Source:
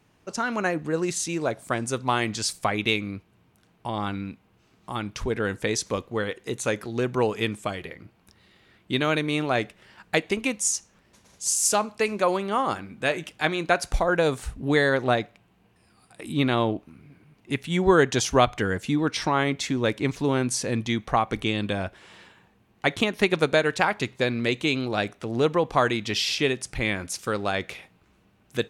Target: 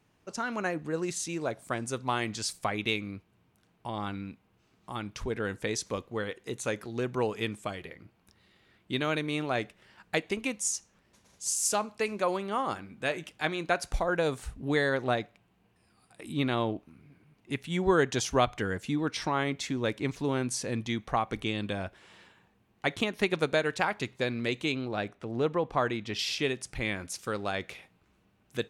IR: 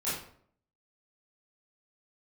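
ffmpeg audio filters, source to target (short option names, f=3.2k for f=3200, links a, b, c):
-filter_complex "[0:a]asettb=1/sr,asplit=3[a][b][c];[a]atrim=end=24.724[d];[b]atrim=start=24.72:end=26.19,asetpts=PTS-STARTPTS,afade=t=in:d=0.004:c=qsin,afade=t=out:st=1.466:d=0.004:c=qsin,highshelf=f=3.8k:g=-10[e];[c]atrim=start=26.186[f];[d][e]acrossfade=d=0.004:c1=hsin:c2=qsin[g];[g][f]acrossfade=d=0.004:c1=qsin:c2=hsin,volume=-6dB"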